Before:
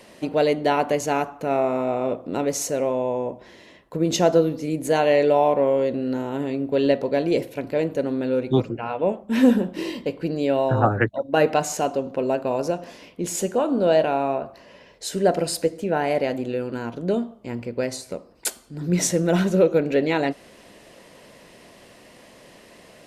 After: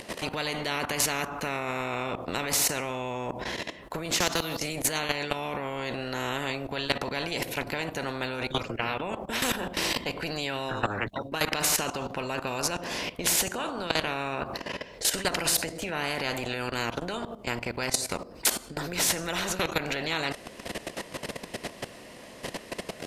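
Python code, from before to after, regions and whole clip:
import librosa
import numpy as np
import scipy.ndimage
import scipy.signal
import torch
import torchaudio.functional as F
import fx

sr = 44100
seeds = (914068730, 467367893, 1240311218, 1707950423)

y = fx.chain(x, sr, fx.highpass(hz=140.0, slope=6),
    fx.quant_float(bits=8),
    fx.band_squash(depth_pct=70), at=(4.11, 4.6))
y = fx.level_steps(y, sr, step_db=16)
y = fx.spectral_comp(y, sr, ratio=4.0)
y = F.gain(torch.from_numpy(y), 1.0).numpy()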